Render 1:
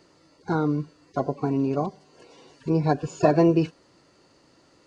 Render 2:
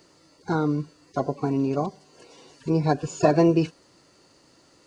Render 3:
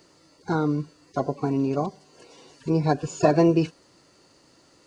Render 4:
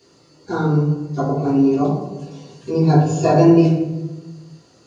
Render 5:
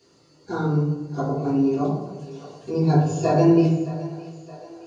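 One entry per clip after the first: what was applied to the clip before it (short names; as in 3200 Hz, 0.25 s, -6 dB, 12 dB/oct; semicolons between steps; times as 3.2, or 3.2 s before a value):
high shelf 5800 Hz +9.5 dB
nothing audible
reverb RT60 1.2 s, pre-delay 3 ms, DRR -11 dB; gain -8 dB
split-band echo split 380 Hz, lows 85 ms, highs 0.618 s, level -15.5 dB; gain -5 dB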